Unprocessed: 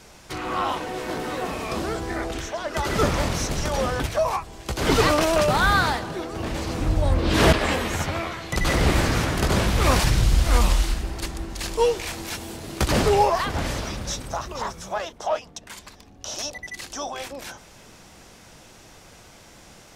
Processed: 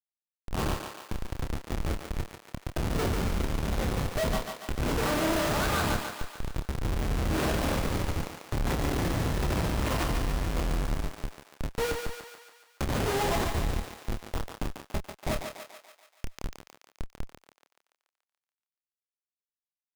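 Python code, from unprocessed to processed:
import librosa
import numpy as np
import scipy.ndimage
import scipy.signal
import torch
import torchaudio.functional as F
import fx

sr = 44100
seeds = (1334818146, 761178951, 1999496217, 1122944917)

p1 = fx.schmitt(x, sr, flips_db=-20.0)
p2 = fx.doubler(p1, sr, ms=28.0, db=-7)
p3 = p2 + fx.echo_thinned(p2, sr, ms=143, feedback_pct=60, hz=420.0, wet_db=-5.0, dry=0)
y = p3 * 10.0 ** (-4.5 / 20.0)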